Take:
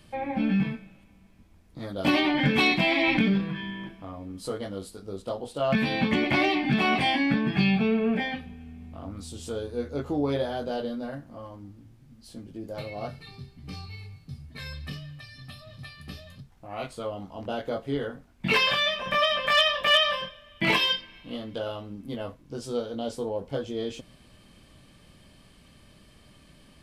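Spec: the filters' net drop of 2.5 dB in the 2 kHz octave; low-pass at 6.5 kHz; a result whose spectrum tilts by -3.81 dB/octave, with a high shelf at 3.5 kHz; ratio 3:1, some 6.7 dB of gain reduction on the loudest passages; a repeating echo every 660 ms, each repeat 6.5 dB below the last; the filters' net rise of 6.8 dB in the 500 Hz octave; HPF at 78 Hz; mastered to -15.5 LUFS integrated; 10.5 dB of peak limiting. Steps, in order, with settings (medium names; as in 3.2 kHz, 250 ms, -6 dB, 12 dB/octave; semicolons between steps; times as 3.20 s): high-pass 78 Hz; low-pass 6.5 kHz; peaking EQ 500 Hz +8.5 dB; peaking EQ 2 kHz -5.5 dB; treble shelf 3.5 kHz +6 dB; compression 3:1, threshold -25 dBFS; peak limiter -24.5 dBFS; feedback delay 660 ms, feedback 47%, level -6.5 dB; trim +18 dB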